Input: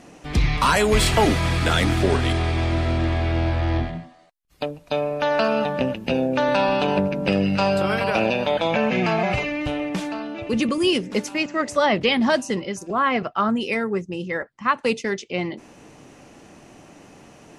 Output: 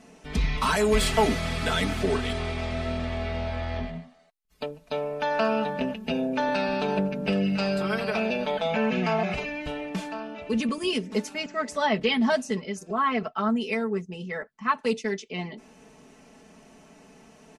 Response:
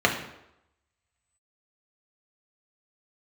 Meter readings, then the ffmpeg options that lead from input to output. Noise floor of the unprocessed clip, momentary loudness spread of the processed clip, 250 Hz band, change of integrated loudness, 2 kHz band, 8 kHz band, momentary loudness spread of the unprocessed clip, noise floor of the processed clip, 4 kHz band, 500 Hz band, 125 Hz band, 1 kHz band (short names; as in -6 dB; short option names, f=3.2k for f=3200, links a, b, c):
-50 dBFS, 10 LU, -4.5 dB, -5.0 dB, -5.5 dB, -5.5 dB, 9 LU, -55 dBFS, -5.5 dB, -5.0 dB, -8.5 dB, -5.0 dB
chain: -af "aecho=1:1:4.6:0.92,volume=-8dB"